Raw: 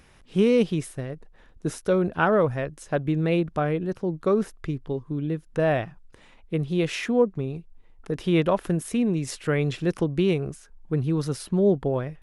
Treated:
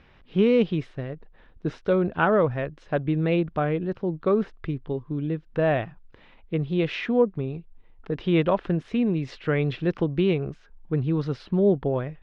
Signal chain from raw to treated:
low-pass filter 3,900 Hz 24 dB per octave

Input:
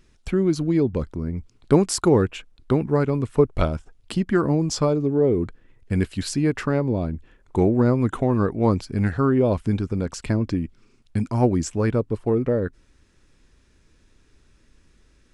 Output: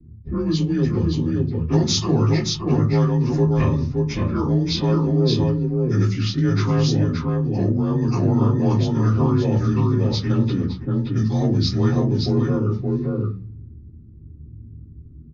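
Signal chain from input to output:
partials spread apart or drawn together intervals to 88%
single-tap delay 574 ms −5 dB
dynamic equaliser 4,400 Hz, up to −4 dB, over −46 dBFS, Q 0.82
0:03.71–0:04.88: notch comb filter 180 Hz
convolution reverb RT60 0.30 s, pre-delay 3 ms, DRR −3.5 dB
low-pass that shuts in the quiet parts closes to 330 Hz, open at −2 dBFS
0:07.03–0:08.08: downward compressor, threshold −2 dBFS, peak gain reduction 6 dB
guitar amp tone stack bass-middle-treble 6-0-2
every bin compressed towards the loudest bin 2 to 1

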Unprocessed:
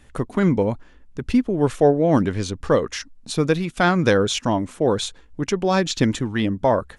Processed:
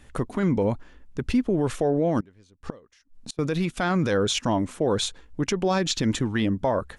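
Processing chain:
0:02.20–0:03.39: gate with flip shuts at −20 dBFS, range −30 dB
brickwall limiter −14.5 dBFS, peak gain reduction 11 dB

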